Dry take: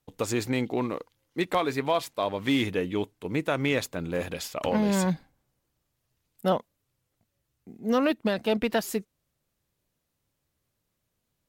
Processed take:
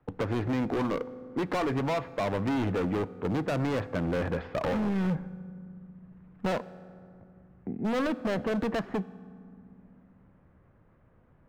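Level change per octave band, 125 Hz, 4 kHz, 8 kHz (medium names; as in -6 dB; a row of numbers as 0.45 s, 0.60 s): +1.5 dB, -8.5 dB, under -10 dB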